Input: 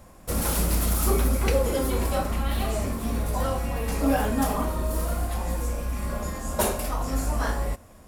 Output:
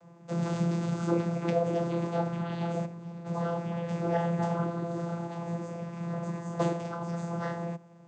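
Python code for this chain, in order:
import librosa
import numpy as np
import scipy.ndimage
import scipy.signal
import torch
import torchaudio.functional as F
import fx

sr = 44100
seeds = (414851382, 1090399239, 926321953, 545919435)

y = fx.comb_fb(x, sr, f0_hz=410.0, decay_s=0.72, harmonics='all', damping=0.0, mix_pct=70, at=(2.84, 3.24), fade=0.02)
y = fx.vocoder(y, sr, bands=16, carrier='saw', carrier_hz=170.0)
y = y * 10.0 ** (-1.0 / 20.0)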